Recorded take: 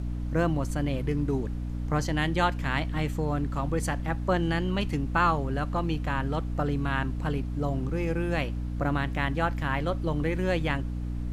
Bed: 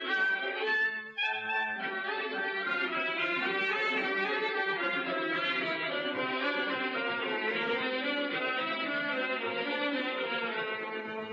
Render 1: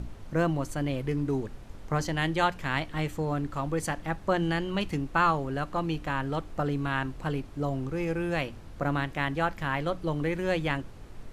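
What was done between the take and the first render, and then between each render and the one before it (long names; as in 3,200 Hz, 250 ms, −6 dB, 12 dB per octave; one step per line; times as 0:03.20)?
mains-hum notches 60/120/180/240/300 Hz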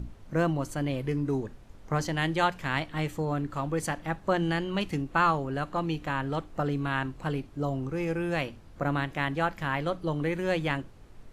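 noise reduction from a noise print 6 dB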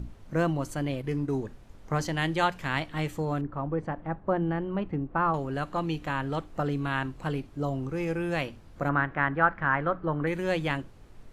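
0:00.81–0:01.37: transient designer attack −2 dB, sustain −7 dB
0:03.41–0:05.34: low-pass filter 1,200 Hz
0:08.89–0:10.27: low-pass with resonance 1,500 Hz, resonance Q 2.7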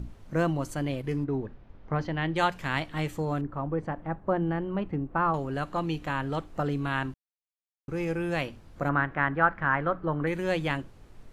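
0:01.24–0:02.36: high-frequency loss of the air 290 metres
0:07.14–0:07.88: silence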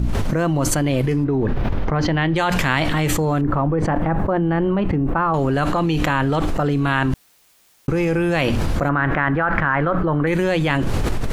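envelope flattener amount 100%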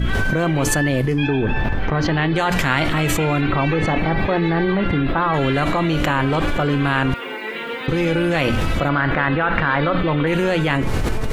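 mix in bed +3.5 dB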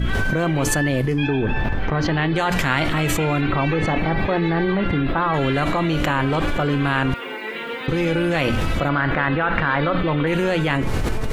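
level −1.5 dB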